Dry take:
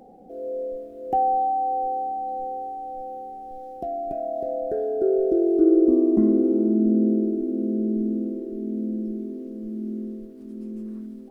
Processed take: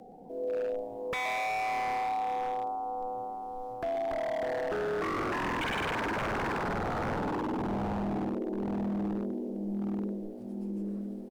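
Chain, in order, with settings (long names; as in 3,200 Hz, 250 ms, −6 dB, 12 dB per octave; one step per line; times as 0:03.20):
dynamic equaliser 340 Hz, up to +4 dB, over −29 dBFS, Q 5
in parallel at −2.5 dB: downward compressor, threshold −26 dBFS, peak gain reduction 15.5 dB
on the sum: frequency shifter −15 Hz
echo with shifted repeats 120 ms, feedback 54%, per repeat +110 Hz, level −13 dB
wave folding −20.5 dBFS
level −6.5 dB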